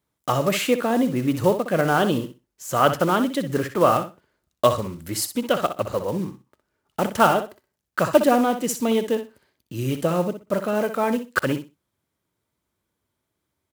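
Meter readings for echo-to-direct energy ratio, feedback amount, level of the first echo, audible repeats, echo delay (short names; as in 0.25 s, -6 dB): -10.0 dB, 18%, -10.0 dB, 2, 62 ms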